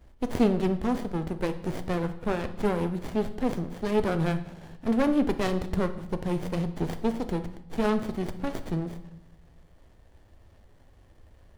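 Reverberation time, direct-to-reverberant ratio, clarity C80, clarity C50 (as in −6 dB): 0.75 s, 9.0 dB, 15.5 dB, 12.5 dB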